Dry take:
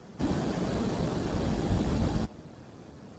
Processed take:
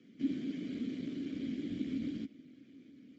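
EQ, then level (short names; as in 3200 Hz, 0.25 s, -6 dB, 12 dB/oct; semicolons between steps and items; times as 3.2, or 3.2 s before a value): vowel filter i; high shelf 6900 Hz +10 dB; 0.0 dB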